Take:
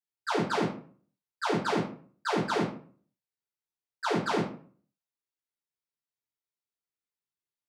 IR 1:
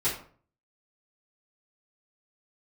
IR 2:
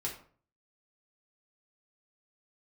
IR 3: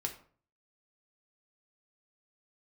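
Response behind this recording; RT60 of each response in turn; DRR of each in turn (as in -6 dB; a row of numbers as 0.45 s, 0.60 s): 1; 0.45 s, 0.45 s, 0.45 s; -13.5 dB, -3.5 dB, 2.0 dB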